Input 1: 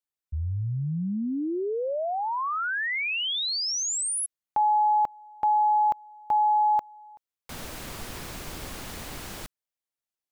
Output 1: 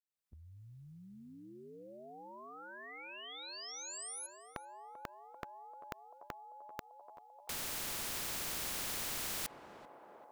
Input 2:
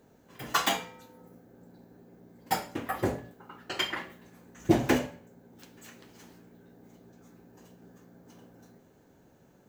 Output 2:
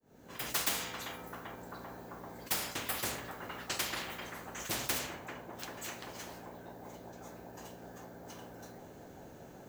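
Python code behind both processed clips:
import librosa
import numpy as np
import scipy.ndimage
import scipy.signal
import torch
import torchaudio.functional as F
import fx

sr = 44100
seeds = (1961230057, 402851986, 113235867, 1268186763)

p1 = fx.fade_in_head(x, sr, length_s=0.7)
p2 = fx.rider(p1, sr, range_db=3, speed_s=2.0)
p3 = p2 + fx.echo_banded(p2, sr, ms=391, feedback_pct=83, hz=670.0, wet_db=-19.5, dry=0)
p4 = fx.spectral_comp(p3, sr, ratio=4.0)
y = F.gain(torch.from_numpy(p4), -7.5).numpy()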